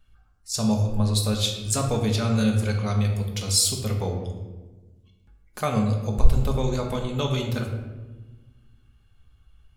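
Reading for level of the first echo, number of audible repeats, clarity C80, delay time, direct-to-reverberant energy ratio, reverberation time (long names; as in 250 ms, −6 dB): no echo audible, no echo audible, 7.0 dB, no echo audible, 1.5 dB, 1.3 s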